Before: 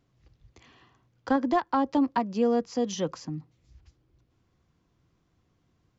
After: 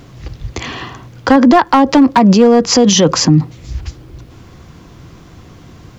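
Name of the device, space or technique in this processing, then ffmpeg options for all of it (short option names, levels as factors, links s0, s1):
loud club master: -af "acompressor=threshold=0.0355:ratio=1.5,asoftclip=type=hard:threshold=0.0841,alimiter=level_in=44.7:limit=0.891:release=50:level=0:latency=1,volume=0.891"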